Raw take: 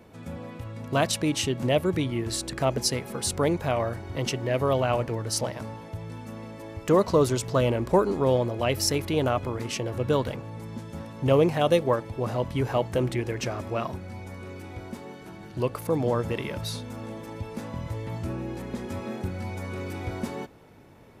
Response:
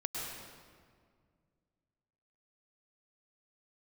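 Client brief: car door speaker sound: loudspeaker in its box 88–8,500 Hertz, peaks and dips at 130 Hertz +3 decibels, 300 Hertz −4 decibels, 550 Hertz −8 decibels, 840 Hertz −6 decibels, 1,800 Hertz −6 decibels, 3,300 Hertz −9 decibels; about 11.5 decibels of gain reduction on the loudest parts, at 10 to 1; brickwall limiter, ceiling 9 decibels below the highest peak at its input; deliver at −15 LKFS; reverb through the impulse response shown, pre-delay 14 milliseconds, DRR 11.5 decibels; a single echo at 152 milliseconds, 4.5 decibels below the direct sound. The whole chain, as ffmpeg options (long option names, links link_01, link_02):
-filter_complex "[0:a]acompressor=threshold=-27dB:ratio=10,alimiter=level_in=1dB:limit=-24dB:level=0:latency=1,volume=-1dB,aecho=1:1:152:0.596,asplit=2[link_01][link_02];[1:a]atrim=start_sample=2205,adelay=14[link_03];[link_02][link_03]afir=irnorm=-1:irlink=0,volume=-14.5dB[link_04];[link_01][link_04]amix=inputs=2:normalize=0,highpass=88,equalizer=frequency=130:width_type=q:width=4:gain=3,equalizer=frequency=300:width_type=q:width=4:gain=-4,equalizer=frequency=550:width_type=q:width=4:gain=-8,equalizer=frequency=840:width_type=q:width=4:gain=-6,equalizer=frequency=1800:width_type=q:width=4:gain=-6,equalizer=frequency=3300:width_type=q:width=4:gain=-9,lowpass=frequency=8500:width=0.5412,lowpass=frequency=8500:width=1.3066,volume=21dB"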